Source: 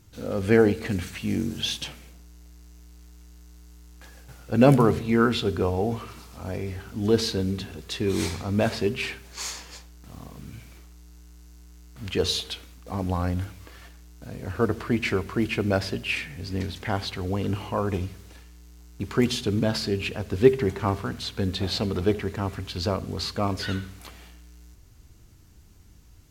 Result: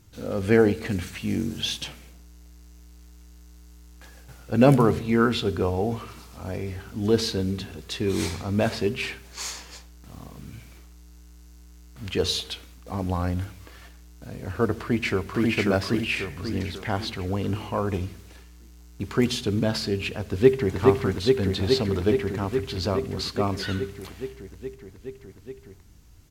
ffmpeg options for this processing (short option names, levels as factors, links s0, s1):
-filter_complex "[0:a]asplit=2[s0][s1];[s1]afade=t=in:st=14.8:d=0.01,afade=t=out:st=15.5:d=0.01,aecho=0:1:540|1080|1620|2160|2700|3240:0.891251|0.401063|0.180478|0.0812152|0.0365469|0.0164461[s2];[s0][s2]amix=inputs=2:normalize=0,asplit=2[s3][s4];[s4]afade=t=in:st=20.3:d=0.01,afade=t=out:st=20.76:d=0.01,aecho=0:1:420|840|1260|1680|2100|2520|2940|3360|3780|4200|4620|5040:0.794328|0.635463|0.50837|0.406696|0.325357|0.260285|0.208228|0.166583|0.133266|0.106613|0.0852903|0.0682323[s5];[s3][s5]amix=inputs=2:normalize=0"